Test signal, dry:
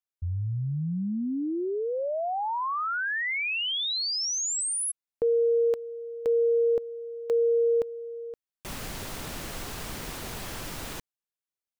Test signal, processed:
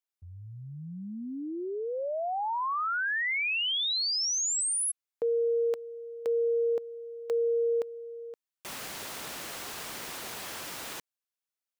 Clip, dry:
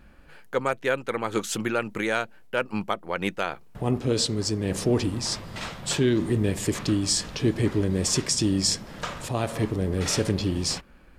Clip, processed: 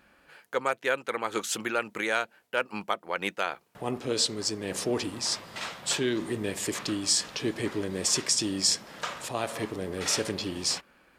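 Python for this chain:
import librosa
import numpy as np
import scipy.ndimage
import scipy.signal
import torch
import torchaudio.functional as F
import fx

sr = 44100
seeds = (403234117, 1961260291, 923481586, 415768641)

y = fx.highpass(x, sr, hz=570.0, slope=6)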